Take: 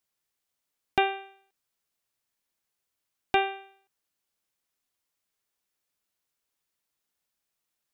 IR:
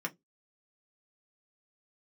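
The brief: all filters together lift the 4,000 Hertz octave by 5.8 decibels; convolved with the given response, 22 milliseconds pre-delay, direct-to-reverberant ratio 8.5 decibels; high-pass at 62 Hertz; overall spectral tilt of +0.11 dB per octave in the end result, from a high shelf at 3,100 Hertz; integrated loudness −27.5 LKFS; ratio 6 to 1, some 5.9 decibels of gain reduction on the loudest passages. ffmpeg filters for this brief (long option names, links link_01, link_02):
-filter_complex "[0:a]highpass=62,highshelf=frequency=3100:gain=4,equalizer=frequency=4000:width_type=o:gain=5.5,acompressor=threshold=-23dB:ratio=6,asplit=2[link_01][link_02];[1:a]atrim=start_sample=2205,adelay=22[link_03];[link_02][link_03]afir=irnorm=-1:irlink=0,volume=-11.5dB[link_04];[link_01][link_04]amix=inputs=2:normalize=0,volume=4.5dB"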